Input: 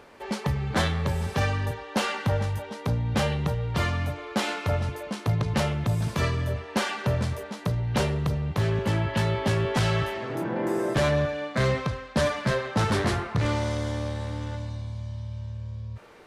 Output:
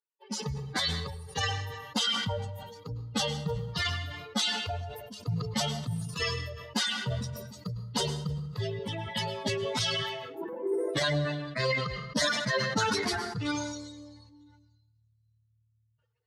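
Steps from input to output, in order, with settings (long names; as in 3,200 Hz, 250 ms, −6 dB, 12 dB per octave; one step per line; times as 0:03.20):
spectral dynamics exaggerated over time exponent 3
meter weighting curve D
brickwall limiter −22.5 dBFS, peak gain reduction 9.5 dB
formants moved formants +2 semitones
low-pass filter 11,000 Hz 12 dB per octave
parametric band 2,400 Hz −14.5 dB 0.21 octaves
dense smooth reverb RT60 0.77 s, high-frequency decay 0.8×, pre-delay 95 ms, DRR 15 dB
level that may fall only so fast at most 39 dB per second
level +4 dB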